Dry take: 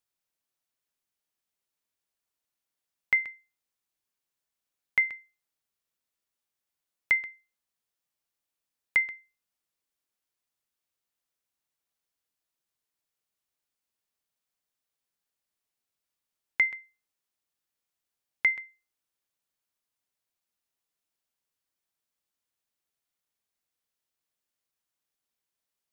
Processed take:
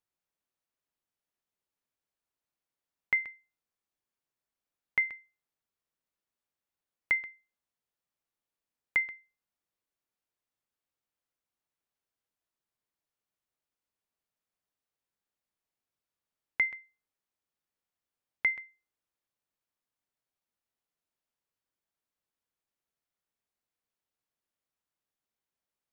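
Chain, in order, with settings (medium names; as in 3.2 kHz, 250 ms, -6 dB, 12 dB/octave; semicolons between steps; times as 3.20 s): treble shelf 2.5 kHz -9 dB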